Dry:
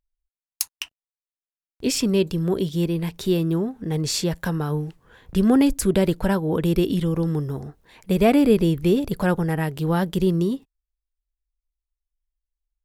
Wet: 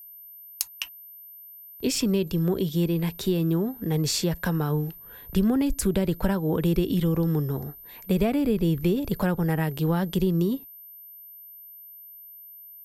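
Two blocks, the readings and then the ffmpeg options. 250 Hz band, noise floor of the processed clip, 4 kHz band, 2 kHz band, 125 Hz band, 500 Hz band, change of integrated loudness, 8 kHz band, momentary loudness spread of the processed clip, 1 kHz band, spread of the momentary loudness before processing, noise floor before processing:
-3.5 dB, -46 dBFS, -2.5 dB, -4.0 dB, -1.5 dB, -5.0 dB, -3.5 dB, -2.5 dB, 19 LU, -5.0 dB, 11 LU, under -85 dBFS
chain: -filter_complex "[0:a]aeval=exprs='val(0)+0.00708*sin(2*PI*13000*n/s)':c=same,acrossover=split=160[a][b];[b]acompressor=threshold=-22dB:ratio=10[c];[a][c]amix=inputs=2:normalize=0"

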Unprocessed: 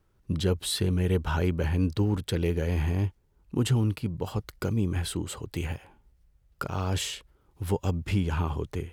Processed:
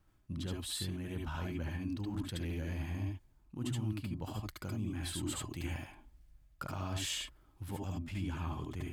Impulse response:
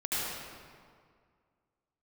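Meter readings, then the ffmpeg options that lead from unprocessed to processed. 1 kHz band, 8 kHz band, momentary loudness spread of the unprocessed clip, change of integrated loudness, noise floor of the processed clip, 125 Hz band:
-9.5 dB, -5.5 dB, 8 LU, -10.5 dB, -66 dBFS, -11.5 dB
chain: -filter_complex "[0:a]equalizer=f=430:t=o:w=0.41:g=-11.5,areverse,acompressor=threshold=-37dB:ratio=4,areverse[a];[1:a]atrim=start_sample=2205,atrim=end_sample=3528[b];[a][b]afir=irnorm=-1:irlink=0,volume=1dB"

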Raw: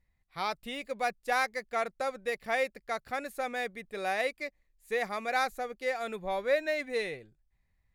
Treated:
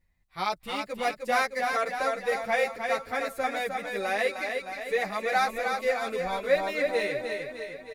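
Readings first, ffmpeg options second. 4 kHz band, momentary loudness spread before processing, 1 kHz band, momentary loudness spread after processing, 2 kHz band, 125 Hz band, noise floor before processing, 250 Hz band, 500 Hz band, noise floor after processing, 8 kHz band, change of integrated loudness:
+4.5 dB, 8 LU, +5.0 dB, 7 LU, +4.5 dB, n/a, -75 dBFS, +4.5 dB, +5.0 dB, -61 dBFS, +4.5 dB, +4.5 dB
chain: -filter_complex "[0:a]asplit=2[a][b];[b]aecho=0:1:307|614|921|1228|1535|1842|2149:0.562|0.315|0.176|0.0988|0.0553|0.031|0.0173[c];[a][c]amix=inputs=2:normalize=0,asplit=2[d][e];[e]adelay=9.2,afreqshift=0.65[f];[d][f]amix=inputs=2:normalize=1,volume=6dB"

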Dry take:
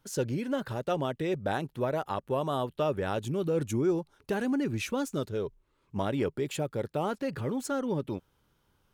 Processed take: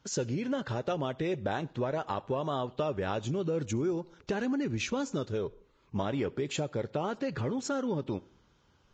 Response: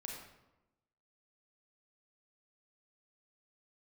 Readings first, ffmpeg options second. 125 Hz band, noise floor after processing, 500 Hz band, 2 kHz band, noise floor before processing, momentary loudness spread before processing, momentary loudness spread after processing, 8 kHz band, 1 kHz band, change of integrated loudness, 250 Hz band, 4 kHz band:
-1.0 dB, -67 dBFS, -2.0 dB, -1.0 dB, -72 dBFS, 4 LU, 4 LU, +1.5 dB, -1.5 dB, -1.5 dB, -1.5 dB, +0.5 dB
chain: -filter_complex "[0:a]acompressor=threshold=-34dB:ratio=3,asplit=2[a][b];[1:a]atrim=start_sample=2205,asetrate=83790,aresample=44100,adelay=68[c];[b][c]afir=irnorm=-1:irlink=0,volume=-15dB[d];[a][d]amix=inputs=2:normalize=0,volume=4dB" -ar 16000 -c:a libvorbis -b:a 32k

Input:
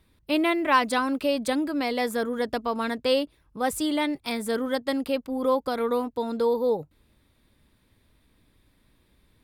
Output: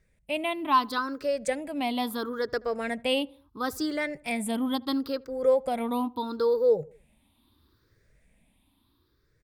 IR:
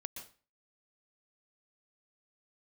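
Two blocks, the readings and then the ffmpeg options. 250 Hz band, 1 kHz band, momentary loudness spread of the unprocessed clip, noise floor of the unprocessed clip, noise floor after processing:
-3.5 dB, -2.0 dB, 6 LU, -66 dBFS, -69 dBFS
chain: -filter_complex "[0:a]afftfilt=real='re*pow(10,15/40*sin(2*PI*(0.54*log(max(b,1)*sr/1024/100)/log(2)-(0.74)*(pts-256)/sr)))':imag='im*pow(10,15/40*sin(2*PI*(0.54*log(max(b,1)*sr/1024/100)/log(2)-(0.74)*(pts-256)/sr)))':win_size=1024:overlap=0.75,dynaudnorm=f=180:g=11:m=4dB,asplit=2[a][b];[b]adelay=78,lowpass=f=1.4k:p=1,volume=-23.5dB,asplit=2[c][d];[d]adelay=78,lowpass=f=1.4k:p=1,volume=0.5,asplit=2[e][f];[f]adelay=78,lowpass=f=1.4k:p=1,volume=0.5[g];[a][c][e][g]amix=inputs=4:normalize=0,volume=-8dB"

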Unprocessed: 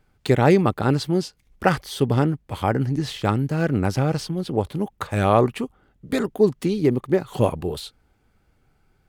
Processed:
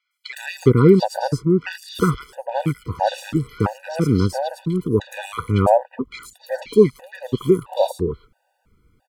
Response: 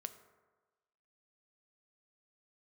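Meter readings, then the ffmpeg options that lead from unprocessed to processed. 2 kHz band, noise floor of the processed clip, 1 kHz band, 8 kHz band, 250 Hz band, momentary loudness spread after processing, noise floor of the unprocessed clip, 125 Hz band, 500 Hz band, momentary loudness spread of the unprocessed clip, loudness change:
-1.5 dB, -71 dBFS, +1.0 dB, +0.5 dB, +2.0 dB, 15 LU, -64 dBFS, +1.0 dB, +3.0 dB, 10 LU, +2.0 dB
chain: -filter_complex "[0:a]acrossover=split=1700|5200[a][b][c];[c]adelay=110[d];[a]adelay=370[e];[e][b][d]amix=inputs=3:normalize=0,afftfilt=real='re*gt(sin(2*PI*1.5*pts/sr)*(1-2*mod(floor(b*sr/1024/490),2)),0)':imag='im*gt(sin(2*PI*1.5*pts/sr)*(1-2*mod(floor(b*sr/1024/490),2)),0)':win_size=1024:overlap=0.75,volume=5dB"

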